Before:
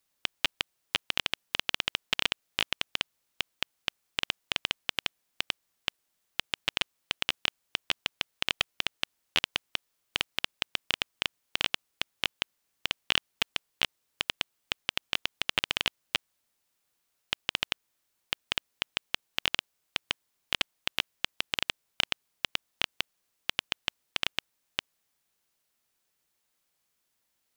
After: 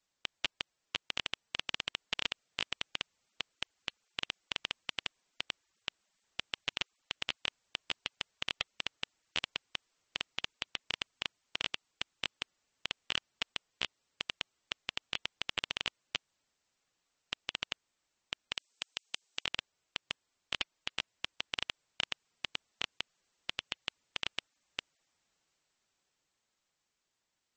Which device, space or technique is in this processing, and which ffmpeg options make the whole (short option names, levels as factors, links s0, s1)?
low-bitrate web radio: -filter_complex "[0:a]asplit=3[s0][s1][s2];[s0]afade=t=out:st=18.55:d=0.02[s3];[s1]bass=f=250:g=-5,treble=f=4000:g=10,afade=t=in:st=18.55:d=0.02,afade=t=out:st=19.43:d=0.02[s4];[s2]afade=t=in:st=19.43:d=0.02[s5];[s3][s4][s5]amix=inputs=3:normalize=0,dynaudnorm=f=190:g=21:m=2.99,alimiter=limit=0.316:level=0:latency=1:release=11,volume=0.708" -ar 44100 -c:a libmp3lame -b:a 32k